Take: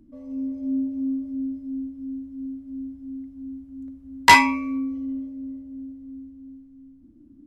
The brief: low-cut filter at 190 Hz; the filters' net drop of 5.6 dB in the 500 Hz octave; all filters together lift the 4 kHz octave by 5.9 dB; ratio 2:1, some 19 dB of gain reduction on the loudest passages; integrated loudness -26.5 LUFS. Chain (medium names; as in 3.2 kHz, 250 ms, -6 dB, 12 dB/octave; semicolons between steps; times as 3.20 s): high-pass 190 Hz; peaking EQ 500 Hz -7.5 dB; peaking EQ 4 kHz +7.5 dB; compression 2:1, threshold -43 dBFS; trim +13 dB